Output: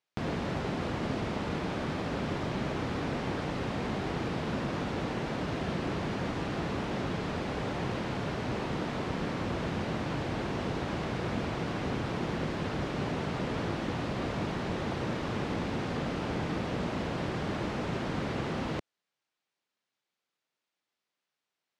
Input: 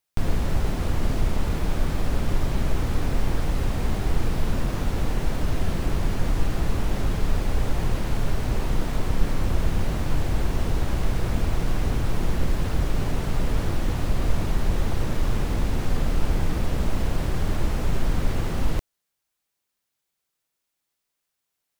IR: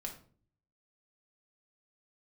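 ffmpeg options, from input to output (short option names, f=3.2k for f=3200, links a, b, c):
-af "highpass=160,lowpass=4.4k,volume=-1dB"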